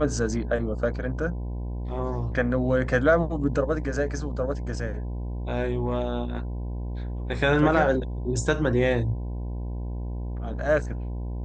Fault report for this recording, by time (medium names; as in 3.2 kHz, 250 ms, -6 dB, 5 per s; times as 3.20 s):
buzz 60 Hz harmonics 17 -31 dBFS